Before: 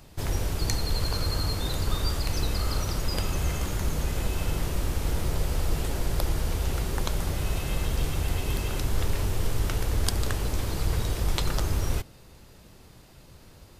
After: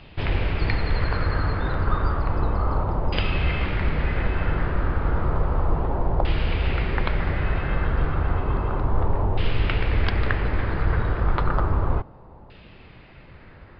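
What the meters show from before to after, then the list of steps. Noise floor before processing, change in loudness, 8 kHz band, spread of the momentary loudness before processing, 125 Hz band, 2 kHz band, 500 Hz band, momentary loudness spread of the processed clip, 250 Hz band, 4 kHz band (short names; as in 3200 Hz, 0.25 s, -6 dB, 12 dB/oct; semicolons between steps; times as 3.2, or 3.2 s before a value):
-51 dBFS, +4.5 dB, under -35 dB, 2 LU, +4.5 dB, +8.0 dB, +5.5 dB, 2 LU, +4.5 dB, -3.0 dB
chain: LFO low-pass saw down 0.32 Hz 870–2900 Hz; downsampling 11025 Hz; gain +4.5 dB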